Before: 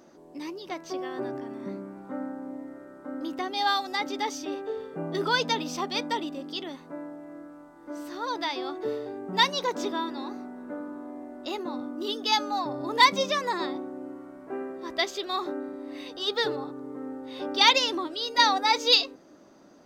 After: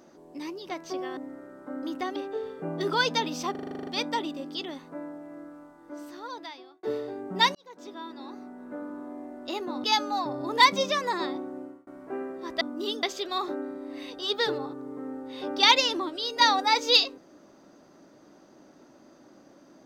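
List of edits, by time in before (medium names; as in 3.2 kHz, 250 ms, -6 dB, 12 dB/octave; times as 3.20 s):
1.17–2.55 s: delete
3.54–4.50 s: delete
5.85 s: stutter 0.04 s, 10 plays
7.57–8.81 s: fade out
9.53–10.95 s: fade in
11.82–12.24 s: move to 15.01 s
13.99–14.27 s: fade out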